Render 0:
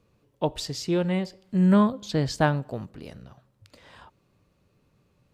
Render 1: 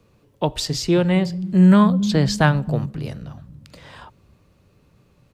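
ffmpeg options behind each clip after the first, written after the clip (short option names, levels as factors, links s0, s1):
-filter_complex "[0:a]acrossover=split=200|980[s0][s1][s2];[s0]aecho=1:1:271|542|813|1084|1355:0.631|0.265|0.111|0.0467|0.0196[s3];[s1]alimiter=limit=0.0944:level=0:latency=1:release=311[s4];[s3][s4][s2]amix=inputs=3:normalize=0,volume=2.51"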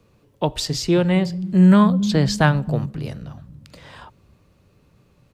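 -af anull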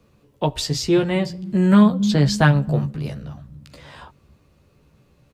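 -filter_complex "[0:a]asplit=2[s0][s1];[s1]adelay=14,volume=0.562[s2];[s0][s2]amix=inputs=2:normalize=0,volume=0.891"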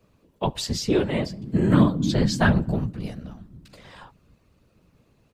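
-af "afftfilt=real='hypot(re,im)*cos(2*PI*random(0))':imag='hypot(re,im)*sin(2*PI*random(1))':win_size=512:overlap=0.75,volume=1.26"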